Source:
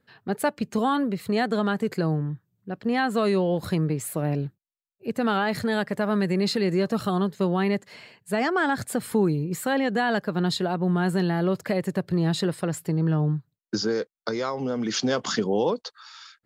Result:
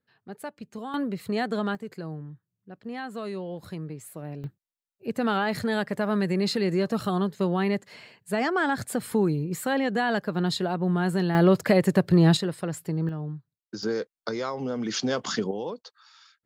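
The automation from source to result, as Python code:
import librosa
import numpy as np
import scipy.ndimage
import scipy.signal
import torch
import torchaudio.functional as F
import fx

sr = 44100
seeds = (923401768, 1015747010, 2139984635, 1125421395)

y = fx.gain(x, sr, db=fx.steps((0.0, -13.0), (0.94, -3.5), (1.75, -11.5), (4.44, -1.5), (11.35, 5.5), (12.37, -3.5), (13.09, -10.0), (13.83, -2.5), (15.51, -9.5)))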